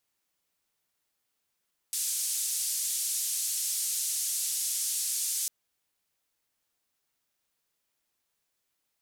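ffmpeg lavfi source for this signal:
ffmpeg -f lavfi -i "anoisesrc=color=white:duration=3.55:sample_rate=44100:seed=1,highpass=frequency=6600,lowpass=frequency=10000,volume=-18.4dB" out.wav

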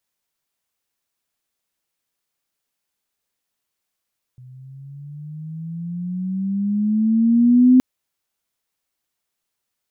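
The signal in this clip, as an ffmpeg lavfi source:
ffmpeg -f lavfi -i "aevalsrc='pow(10,(-7.5+31.5*(t/3.42-1))/20)*sin(2*PI*125*3.42/(12.5*log(2)/12)*(exp(12.5*log(2)/12*t/3.42)-1))':duration=3.42:sample_rate=44100" out.wav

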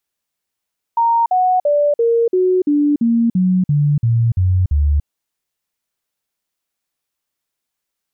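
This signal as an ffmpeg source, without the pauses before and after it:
ffmpeg -f lavfi -i "aevalsrc='0.282*clip(min(mod(t,0.34),0.29-mod(t,0.34))/0.005,0,1)*sin(2*PI*928*pow(2,-floor(t/0.34)/3)*mod(t,0.34))':duration=4.08:sample_rate=44100" out.wav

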